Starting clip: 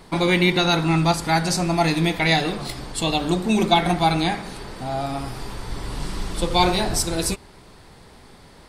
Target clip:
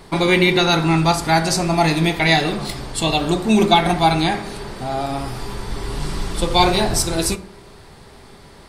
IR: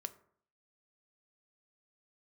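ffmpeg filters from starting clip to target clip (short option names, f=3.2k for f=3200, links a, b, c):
-filter_complex "[1:a]atrim=start_sample=2205[a];[0:a][a]afir=irnorm=-1:irlink=0,volume=6.5dB"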